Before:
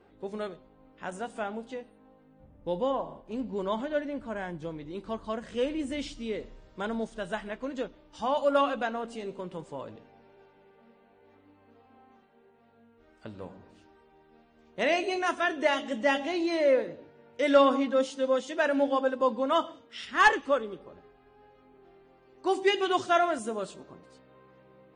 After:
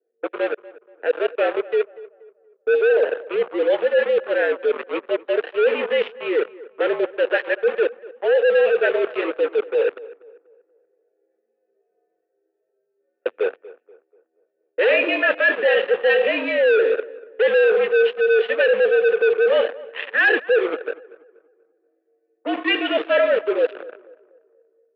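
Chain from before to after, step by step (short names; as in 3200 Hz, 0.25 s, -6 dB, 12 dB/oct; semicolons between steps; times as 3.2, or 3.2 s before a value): vowel filter e; AGC gain up to 6 dB; sample leveller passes 5; reverse; compressor, threshold -22 dBFS, peak gain reduction 10 dB; reverse; low-pass opened by the level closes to 900 Hz, open at -25.5 dBFS; on a send: tape echo 0.24 s, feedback 42%, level -17.5 dB, low-pass 1600 Hz; on the sum: mistuned SSB -65 Hz 470–3300 Hz; gain +7.5 dB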